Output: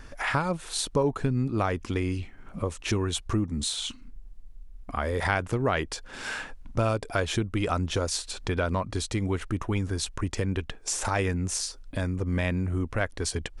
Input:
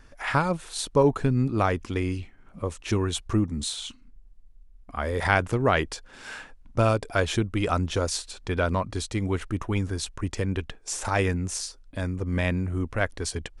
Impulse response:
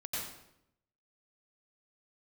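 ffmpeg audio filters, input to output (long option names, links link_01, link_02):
-af "acompressor=threshold=-38dB:ratio=2,volume=7dB"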